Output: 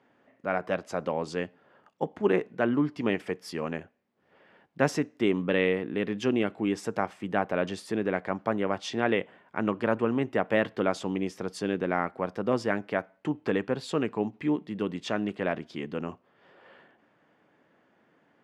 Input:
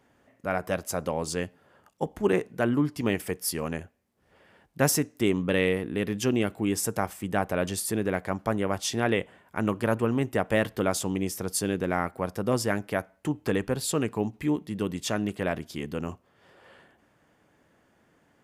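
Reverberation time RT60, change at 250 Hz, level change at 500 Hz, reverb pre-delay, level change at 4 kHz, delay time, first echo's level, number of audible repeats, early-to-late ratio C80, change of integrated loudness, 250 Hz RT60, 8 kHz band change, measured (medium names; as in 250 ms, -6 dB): no reverb, -1.0 dB, 0.0 dB, no reverb, -4.0 dB, no echo, no echo, no echo, no reverb, -1.5 dB, no reverb, -15.0 dB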